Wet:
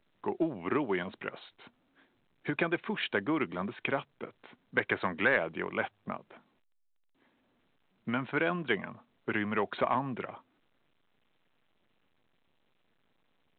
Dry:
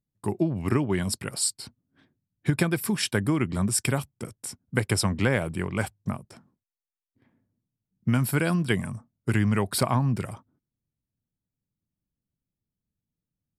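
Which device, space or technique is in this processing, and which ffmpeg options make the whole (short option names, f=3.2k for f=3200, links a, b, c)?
telephone: -filter_complex "[0:a]asettb=1/sr,asplit=3[a][b][c];[a]atrim=end=4.784[d];[b]atrim=start=4.78:end=5.37,asetpts=PTS-STARTPTS,afade=t=in:d=0.004:c=qsin,afade=t=out:st=0.586:d=0.004:c=qsin,equalizer=f=1.7k:w=2.3:g=7[e];[c]atrim=start=5.366[f];[d][e]acrossfade=d=0.004:c1=hsin:c2=qsin[g];[g][f]acrossfade=d=0.004:c1=qsin:c2=hsin,highpass=370,lowpass=3.2k,asoftclip=type=tanh:threshold=-16dB" -ar 8000 -c:a pcm_alaw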